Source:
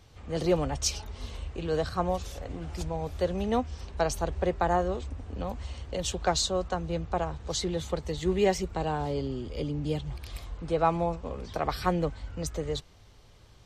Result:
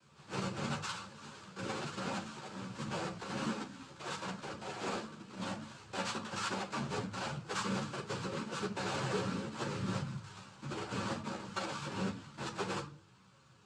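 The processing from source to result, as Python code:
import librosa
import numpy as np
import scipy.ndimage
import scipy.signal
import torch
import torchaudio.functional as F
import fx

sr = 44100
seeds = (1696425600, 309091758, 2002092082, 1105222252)

y = np.r_[np.sort(x[:len(x) // 32 * 32].reshape(-1, 32), axis=1).ravel(), x[len(x) // 32 * 32:]]
y = fx.over_compress(y, sr, threshold_db=-29.0, ratio=-0.5)
y = fx.noise_vocoder(y, sr, seeds[0], bands=8)
y = fx.room_shoebox(y, sr, seeds[1], volume_m3=360.0, walls='furnished', distance_m=1.1)
y = fx.ensemble(y, sr)
y = y * 10.0 ** (-4.5 / 20.0)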